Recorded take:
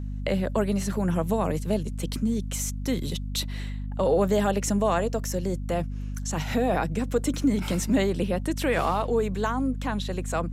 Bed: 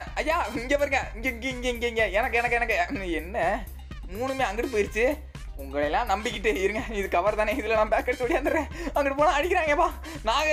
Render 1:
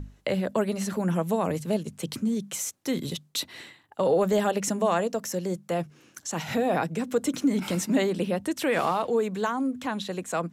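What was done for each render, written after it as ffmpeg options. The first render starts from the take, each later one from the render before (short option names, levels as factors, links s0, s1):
-af "bandreject=f=50:t=h:w=6,bandreject=f=100:t=h:w=6,bandreject=f=150:t=h:w=6,bandreject=f=200:t=h:w=6,bandreject=f=250:t=h:w=6"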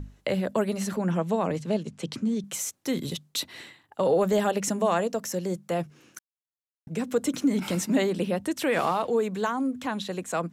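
-filter_complex "[0:a]asettb=1/sr,asplit=3[s0][s1][s2];[s0]atrim=end=0.964[s3];[s1]atrim=start=0.96:end=2.44,asetpts=PTS-STARTPTS,afade=t=in:d=0.004:c=qsin,afade=t=out:st=1.476:d=0.004:c=qsin,highpass=100,lowpass=6300[s4];[s2]atrim=start=2.436[s5];[s3][s4]acrossfade=d=0.004:c1=hsin:c2=qsin[s6];[s6][s5]acrossfade=d=0.004:c1=qsin:c2=hsin,asplit=3[s7][s8][s9];[s7]atrim=end=6.19,asetpts=PTS-STARTPTS,afade=t=out:st=6.186:d=0.004:c=hsin[s10];[s8]atrim=start=6.19:end=6.87,asetpts=PTS-STARTPTS,volume=0[s11];[s9]atrim=start=6.87,asetpts=PTS-STARTPTS,afade=t=in:d=0.004:c=hsin[s12];[s10][s11][s12]concat=n=3:v=0:a=1"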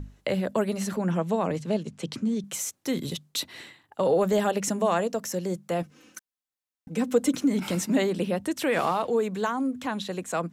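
-filter_complex "[0:a]asettb=1/sr,asplit=3[s0][s1][s2];[s0]atrim=end=5.824[s3];[s1]atrim=start=5.82:end=7.35,asetpts=PTS-STARTPTS,afade=t=in:d=0.004:c=qsin,afade=t=out:st=1.526:d=0.004:c=qsin,aecho=1:1:3.9:0.65,atrim=end_sample=67473[s4];[s2]atrim=start=7.346[s5];[s3][s4]acrossfade=d=0.004:c1=hsin:c2=qsin[s6];[s6][s5]acrossfade=d=0.004:c1=qsin:c2=hsin"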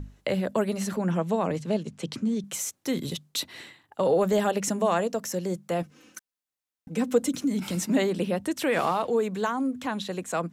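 -filter_complex "[0:a]asettb=1/sr,asplit=3[s0][s1][s2];[s0]atrim=end=7.224[s3];[s1]atrim=start=7.22:end=7.82,asetpts=PTS-STARTPTS,afade=t=in:d=0.004:c=qsin,afade=t=out:st=0.596:d=0.004:c=qsin,acrossover=split=280|3000[s4][s5][s6];[s5]acompressor=threshold=0.00398:ratio=1.5:attack=3.2:release=140:knee=2.83:detection=peak[s7];[s4][s7][s6]amix=inputs=3:normalize=0[s8];[s2]atrim=start=7.816[s9];[s3][s8]acrossfade=d=0.004:c1=hsin:c2=qsin[s10];[s10][s9]acrossfade=d=0.004:c1=qsin:c2=hsin"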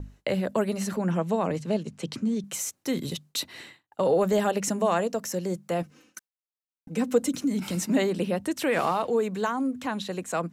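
-af "bandreject=f=3400:w=22,agate=range=0.0224:threshold=0.00447:ratio=3:detection=peak"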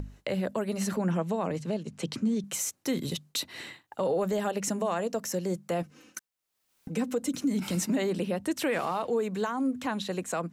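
-af "alimiter=limit=0.1:level=0:latency=1:release=233,acompressor=mode=upward:threshold=0.02:ratio=2.5"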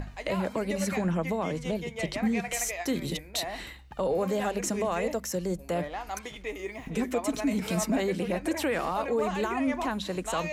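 -filter_complex "[1:a]volume=0.266[s0];[0:a][s0]amix=inputs=2:normalize=0"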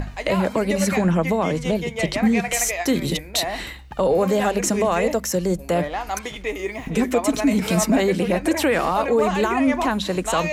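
-af "volume=2.82"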